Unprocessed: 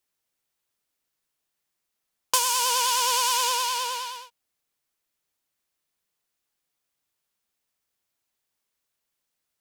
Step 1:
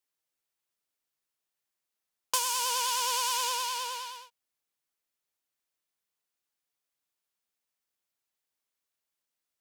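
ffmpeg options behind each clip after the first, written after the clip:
-af "lowshelf=f=220:g=-5.5,volume=-6dB"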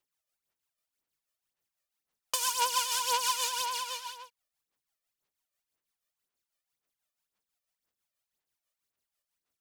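-af "tremolo=f=6.1:d=0.53,aphaser=in_gain=1:out_gain=1:delay=1.7:decay=0.61:speed=1.9:type=sinusoidal"

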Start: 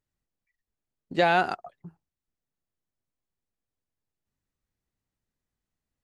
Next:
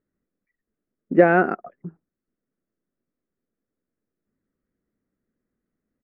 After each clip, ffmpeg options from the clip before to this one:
-af "firequalizer=gain_entry='entry(110,0);entry(210,14);entry(350,13);entry(530,10);entry(850,-3);entry(1300,6);entry(2000,2);entry(3800,-29);entry(5400,-19)':delay=0.05:min_phase=1"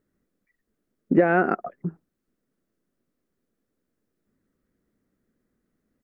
-af "acompressor=threshold=-21dB:ratio=6,volume=6dB"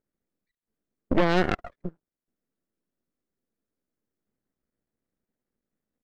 -af "aeval=exprs='max(val(0),0)':c=same,aeval=exprs='0.501*(cos(1*acos(clip(val(0)/0.501,-1,1)))-cos(1*PI/2))+0.224*(cos(6*acos(clip(val(0)/0.501,-1,1)))-cos(6*PI/2))':c=same,volume=-7.5dB"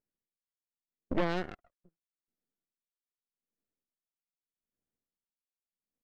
-af "aeval=exprs='val(0)*pow(10,-24*(0.5-0.5*cos(2*PI*0.82*n/s))/20)':c=same,volume=-8dB"

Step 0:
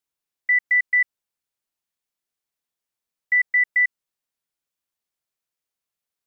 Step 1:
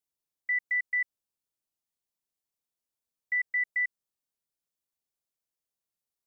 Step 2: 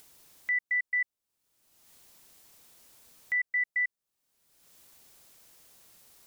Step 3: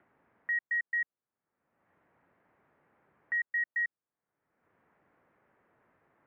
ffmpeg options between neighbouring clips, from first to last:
-af "equalizer=f=1.9k:t=o:w=2:g=-7,volume=-3dB"
-af "acompressor=mode=upward:threshold=-33dB:ratio=2.5"
-af "highpass=f=190:t=q:w=0.5412,highpass=f=190:t=q:w=1.307,lowpass=f=2k:t=q:w=0.5176,lowpass=f=2k:t=q:w=0.7071,lowpass=f=2k:t=q:w=1.932,afreqshift=-86"

